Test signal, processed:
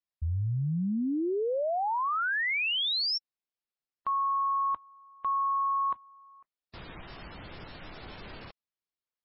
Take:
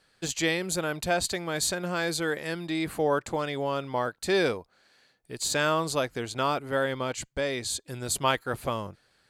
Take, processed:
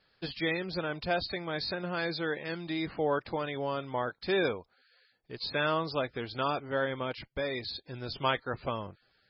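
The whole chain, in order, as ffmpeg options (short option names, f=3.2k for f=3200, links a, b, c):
-af "volume=-3.5dB" -ar 22050 -c:a libmp3lame -b:a 16k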